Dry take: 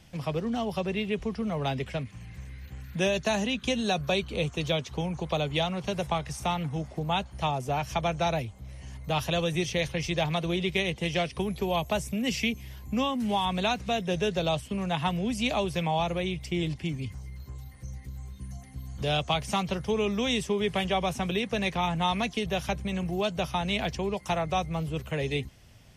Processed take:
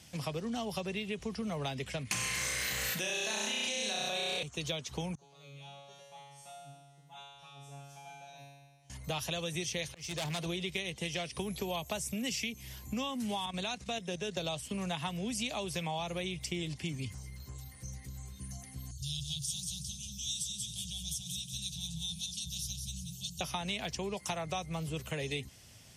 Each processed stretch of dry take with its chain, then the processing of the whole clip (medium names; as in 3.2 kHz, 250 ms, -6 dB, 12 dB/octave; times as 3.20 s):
2.11–4.43 s: high-pass 690 Hz 6 dB/octave + flutter echo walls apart 5.6 m, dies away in 1.3 s + level flattener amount 100%
5.15–8.90 s: tremolo triangle 4.1 Hz, depth 65% + feedback comb 140 Hz, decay 1.4 s, mix 100%
9.87–10.46 s: overload inside the chain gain 28.5 dB + slow attack 320 ms
13.46–14.37 s: low-pass 11 kHz 24 dB/octave + level held to a coarse grid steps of 10 dB + three bands expanded up and down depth 40%
18.91–23.41 s: inverse Chebyshev band-stop 250–2200 Hz + feedback delay 184 ms, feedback 39%, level -5.5 dB
whole clip: high-pass 69 Hz; peaking EQ 8.4 kHz +11.5 dB 2.2 oct; compression, threshold -30 dBFS; trim -3 dB